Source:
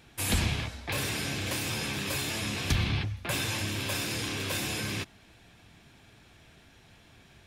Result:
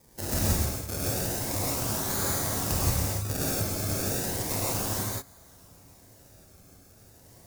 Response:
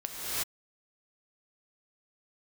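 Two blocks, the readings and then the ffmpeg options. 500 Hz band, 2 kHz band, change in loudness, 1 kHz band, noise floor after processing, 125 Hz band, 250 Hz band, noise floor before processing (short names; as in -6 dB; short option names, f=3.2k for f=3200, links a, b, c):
+5.0 dB, -6.0 dB, +2.5 dB, +3.5 dB, -55 dBFS, +2.0 dB, +2.0 dB, -58 dBFS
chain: -filter_complex "[0:a]acrusher=samples=31:mix=1:aa=0.000001:lfo=1:lforange=31:lforate=0.34,aexciter=amount=6.1:drive=2.2:freq=4.6k[a];[1:a]atrim=start_sample=2205,afade=t=out:st=0.36:d=0.01,atrim=end_sample=16317,asetrate=74970,aresample=44100[b];[a][b]afir=irnorm=-1:irlink=0"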